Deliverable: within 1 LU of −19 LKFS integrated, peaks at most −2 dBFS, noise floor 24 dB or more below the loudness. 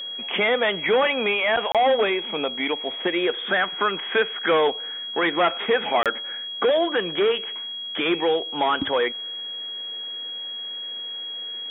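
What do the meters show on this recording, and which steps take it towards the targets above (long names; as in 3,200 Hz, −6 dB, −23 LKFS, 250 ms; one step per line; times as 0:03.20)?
number of dropouts 2; longest dropout 27 ms; interfering tone 3,300 Hz; level of the tone −30 dBFS; integrated loudness −23.0 LKFS; sample peak −9.0 dBFS; target loudness −19.0 LKFS
→ repair the gap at 0:01.72/0:06.03, 27 ms
notch filter 3,300 Hz, Q 30
level +4 dB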